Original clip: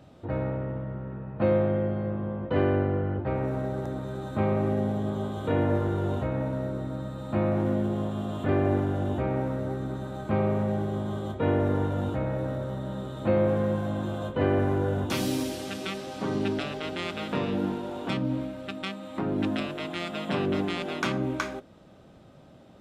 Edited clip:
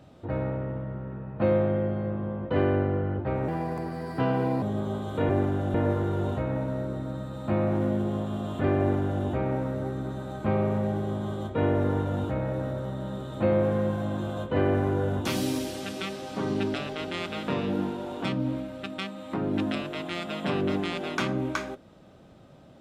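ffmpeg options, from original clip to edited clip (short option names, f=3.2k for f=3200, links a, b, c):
-filter_complex "[0:a]asplit=5[a][b][c][d][e];[a]atrim=end=3.484[f];[b]atrim=start=3.48:end=4.92,asetpts=PTS-STARTPTS,asetrate=55566,aresample=44100[g];[c]atrim=start=4.916:end=5.592[h];[d]atrim=start=8.638:end=9.092[i];[e]atrim=start=5.588[j];[f][g]acrossfade=d=0.004:c1=hsin:c2=hsin[k];[k][h]acrossfade=d=0.004:c1=hsin:c2=hsin[l];[l][i]acrossfade=d=0.004:c1=hsin:c2=hsin[m];[m][j]acrossfade=d=0.004:c1=hsin:c2=hsin"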